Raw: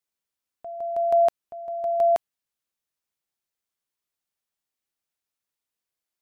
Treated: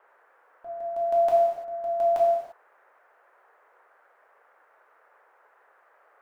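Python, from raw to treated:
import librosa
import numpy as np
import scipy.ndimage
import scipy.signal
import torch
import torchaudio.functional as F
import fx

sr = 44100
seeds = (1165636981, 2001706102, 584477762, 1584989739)

y = fx.rev_gated(x, sr, seeds[0], gate_ms=370, shape='falling', drr_db=-5.0)
y = fx.dmg_noise_band(y, sr, seeds[1], low_hz=440.0, high_hz=1700.0, level_db=-55.0)
y = y * librosa.db_to_amplitude(-6.0)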